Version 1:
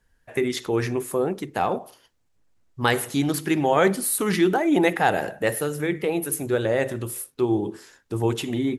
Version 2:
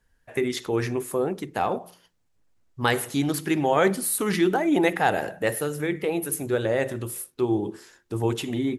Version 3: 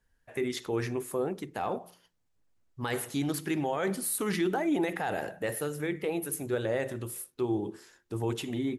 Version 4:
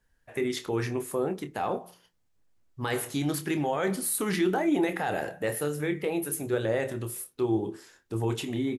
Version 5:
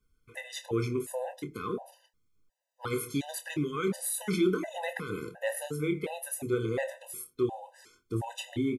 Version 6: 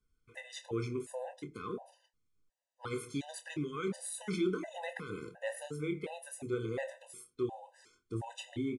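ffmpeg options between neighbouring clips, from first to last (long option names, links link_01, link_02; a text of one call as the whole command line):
ffmpeg -i in.wav -af "bandreject=frequency=177:width_type=h:width=4,bandreject=frequency=354:width_type=h:width=4,volume=-1.5dB" out.wav
ffmpeg -i in.wav -af "alimiter=limit=-15dB:level=0:latency=1:release=16,volume=-5.5dB" out.wav
ffmpeg -i in.wav -filter_complex "[0:a]asplit=2[link_01][link_02];[link_02]adelay=27,volume=-10dB[link_03];[link_01][link_03]amix=inputs=2:normalize=0,volume=2dB" out.wav
ffmpeg -i in.wav -af "afftfilt=real='re*gt(sin(2*PI*1.4*pts/sr)*(1-2*mod(floor(b*sr/1024/510),2)),0)':imag='im*gt(sin(2*PI*1.4*pts/sr)*(1-2*mod(floor(b*sr/1024/510),2)),0)':win_size=1024:overlap=0.75" out.wav
ffmpeg -i in.wav -af "aresample=22050,aresample=44100,volume=-6dB" out.wav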